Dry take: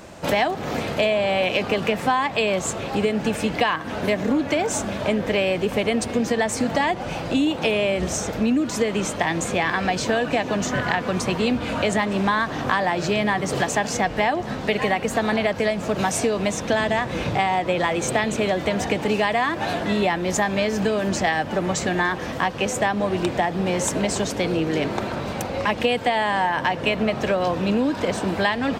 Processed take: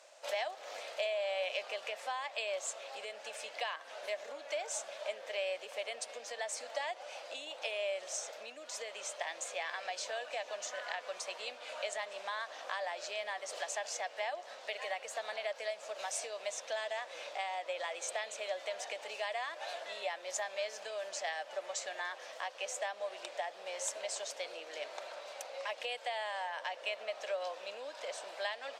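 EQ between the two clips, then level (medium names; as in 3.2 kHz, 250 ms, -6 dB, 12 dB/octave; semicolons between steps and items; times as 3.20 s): resonant high-pass 580 Hz, resonance Q 4.9; distance through air 73 m; differentiator; -5.0 dB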